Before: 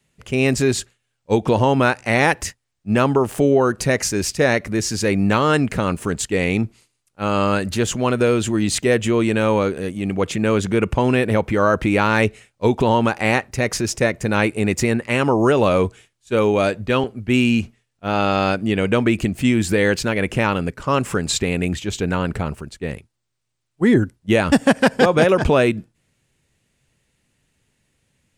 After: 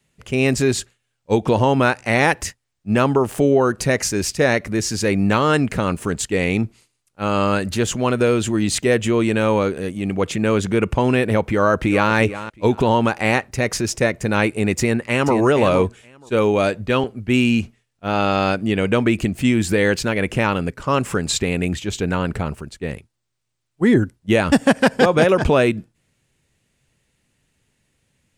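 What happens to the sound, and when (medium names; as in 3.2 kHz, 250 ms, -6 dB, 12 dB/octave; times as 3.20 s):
11.46–12.13 s: echo throw 360 ms, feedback 20%, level -13 dB
14.79–15.35 s: echo throw 470 ms, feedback 10%, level -8.5 dB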